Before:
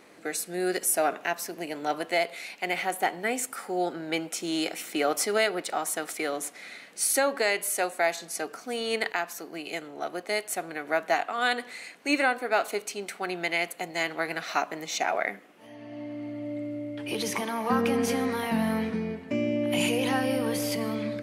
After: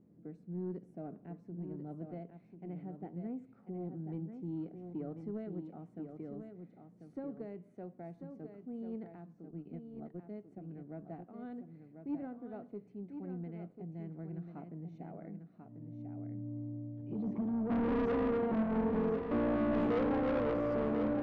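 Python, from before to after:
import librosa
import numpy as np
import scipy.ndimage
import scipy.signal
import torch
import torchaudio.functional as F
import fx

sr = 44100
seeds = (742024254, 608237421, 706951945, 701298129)

y = fx.high_shelf(x, sr, hz=2500.0, db=10.5)
y = fx.transient(y, sr, attack_db=4, sustain_db=-11, at=(9.5, 10.22))
y = fx.filter_sweep_lowpass(y, sr, from_hz=160.0, to_hz=460.0, start_s=17.0, end_s=18.16, q=1.8)
y = 10.0 ** (-29.5 / 20.0) * np.tanh(y / 10.0 ** (-29.5 / 20.0))
y = y + 10.0 ** (-7.5 / 20.0) * np.pad(y, (int(1042 * sr / 1000.0), 0))[:len(y)]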